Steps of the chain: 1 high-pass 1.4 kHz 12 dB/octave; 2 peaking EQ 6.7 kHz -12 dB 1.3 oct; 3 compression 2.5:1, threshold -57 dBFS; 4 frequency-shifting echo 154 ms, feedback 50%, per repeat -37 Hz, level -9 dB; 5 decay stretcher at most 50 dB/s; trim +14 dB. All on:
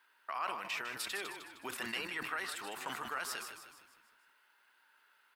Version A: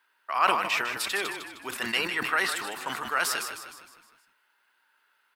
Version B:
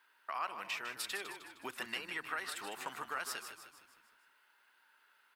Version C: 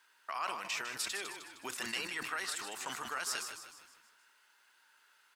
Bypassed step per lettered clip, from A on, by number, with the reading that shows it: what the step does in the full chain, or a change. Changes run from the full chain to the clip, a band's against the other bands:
3, mean gain reduction 9.5 dB; 5, 125 Hz band -3.0 dB; 2, 8 kHz band +6.5 dB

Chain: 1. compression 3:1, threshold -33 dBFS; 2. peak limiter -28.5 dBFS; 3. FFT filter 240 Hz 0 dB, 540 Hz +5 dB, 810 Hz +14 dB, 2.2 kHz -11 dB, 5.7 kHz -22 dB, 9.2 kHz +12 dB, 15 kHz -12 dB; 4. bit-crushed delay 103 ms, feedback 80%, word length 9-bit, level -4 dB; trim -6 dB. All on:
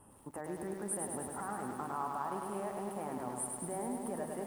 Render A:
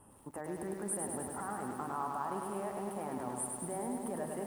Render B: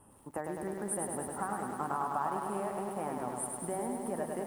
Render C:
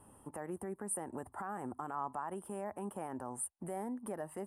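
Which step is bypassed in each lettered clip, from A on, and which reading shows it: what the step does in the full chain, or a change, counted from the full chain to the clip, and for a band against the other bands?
1, mean gain reduction 4.5 dB; 2, mean gain reduction 2.0 dB; 4, loudness change -2.5 LU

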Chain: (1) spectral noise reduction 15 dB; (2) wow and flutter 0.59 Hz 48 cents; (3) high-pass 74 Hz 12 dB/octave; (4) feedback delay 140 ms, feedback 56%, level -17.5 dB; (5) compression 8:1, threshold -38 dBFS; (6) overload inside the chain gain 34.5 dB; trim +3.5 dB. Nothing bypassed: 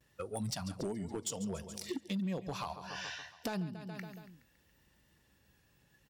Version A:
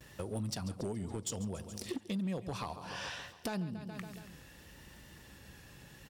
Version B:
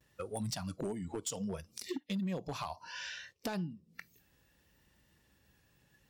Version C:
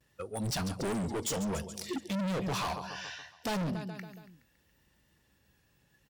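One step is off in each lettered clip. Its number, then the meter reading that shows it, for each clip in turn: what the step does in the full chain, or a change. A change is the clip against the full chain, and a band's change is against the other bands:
1, 125 Hz band +2.5 dB; 4, momentary loudness spread change -2 LU; 5, crest factor change -5.0 dB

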